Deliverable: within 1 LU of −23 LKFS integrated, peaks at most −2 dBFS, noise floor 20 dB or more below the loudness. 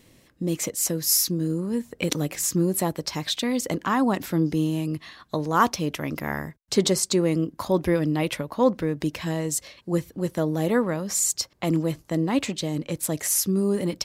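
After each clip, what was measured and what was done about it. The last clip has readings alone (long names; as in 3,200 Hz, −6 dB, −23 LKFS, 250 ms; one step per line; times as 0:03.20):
integrated loudness −25.0 LKFS; sample peak −3.0 dBFS; target loudness −23.0 LKFS
→ level +2 dB
brickwall limiter −2 dBFS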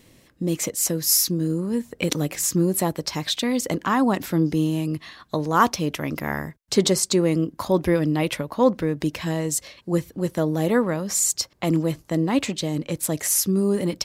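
integrated loudness −23.0 LKFS; sample peak −2.0 dBFS; background noise floor −58 dBFS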